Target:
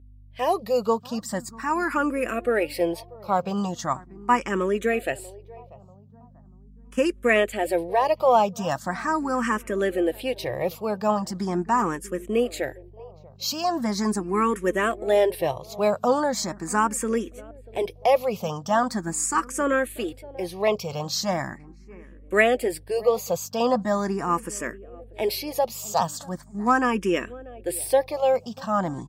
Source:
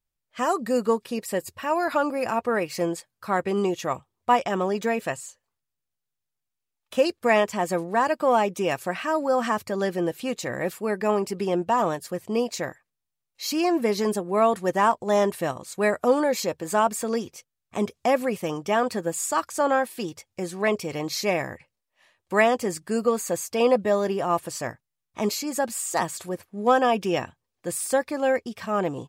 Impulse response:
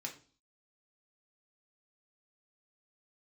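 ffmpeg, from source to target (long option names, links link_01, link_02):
-filter_complex "[0:a]agate=range=-7dB:threshold=-39dB:ratio=16:detection=peak,aeval=exprs='val(0)+0.00355*(sin(2*PI*50*n/s)+sin(2*PI*2*50*n/s)/2+sin(2*PI*3*50*n/s)/3+sin(2*PI*4*50*n/s)/4+sin(2*PI*5*50*n/s)/5)':channel_layout=same,asplit=2[link_01][link_02];[link_02]adelay=639,lowpass=frequency=820:poles=1,volume=-19.5dB,asplit=2[link_03][link_04];[link_04]adelay=639,lowpass=frequency=820:poles=1,volume=0.48,asplit=2[link_05][link_06];[link_06]adelay=639,lowpass=frequency=820:poles=1,volume=0.48,asplit=2[link_07][link_08];[link_08]adelay=639,lowpass=frequency=820:poles=1,volume=0.48[link_09];[link_01][link_03][link_05][link_07][link_09]amix=inputs=5:normalize=0,asplit=2[link_10][link_11];[link_11]afreqshift=0.4[link_12];[link_10][link_12]amix=inputs=2:normalize=1,volume=3.5dB"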